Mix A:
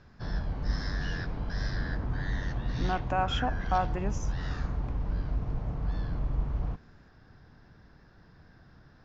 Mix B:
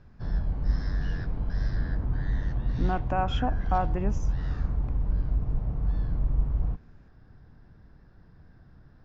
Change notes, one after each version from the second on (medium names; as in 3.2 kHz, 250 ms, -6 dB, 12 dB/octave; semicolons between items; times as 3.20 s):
background -4.0 dB; master: add tilt EQ -2 dB/octave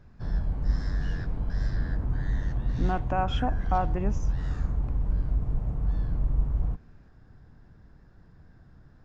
background: remove steep low-pass 5.9 kHz 48 dB/octave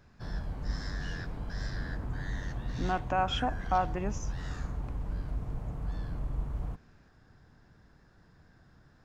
master: add tilt EQ +2 dB/octave